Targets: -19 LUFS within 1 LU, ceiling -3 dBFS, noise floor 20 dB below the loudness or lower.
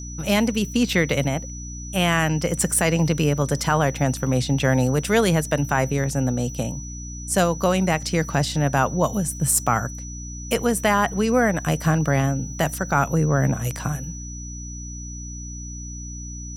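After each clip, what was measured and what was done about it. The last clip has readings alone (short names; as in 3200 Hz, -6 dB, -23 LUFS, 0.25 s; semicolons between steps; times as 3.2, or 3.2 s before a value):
hum 60 Hz; harmonics up to 300 Hz; hum level -32 dBFS; steady tone 5900 Hz; tone level -37 dBFS; loudness -21.5 LUFS; peak -4.5 dBFS; loudness target -19.0 LUFS
-> notches 60/120/180/240/300 Hz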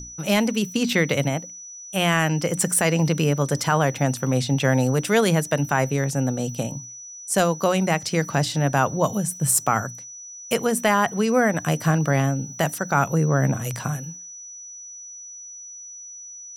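hum none; steady tone 5900 Hz; tone level -37 dBFS
-> notch 5900 Hz, Q 30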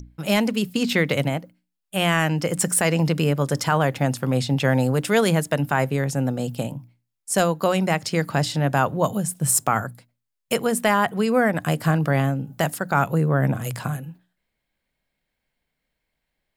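steady tone none; loudness -22.0 LUFS; peak -5.0 dBFS; loudness target -19.0 LUFS
-> gain +3 dB; limiter -3 dBFS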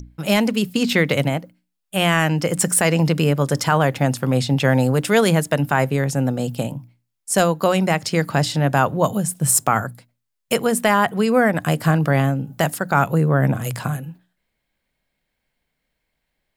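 loudness -19.0 LUFS; peak -3.0 dBFS; noise floor -77 dBFS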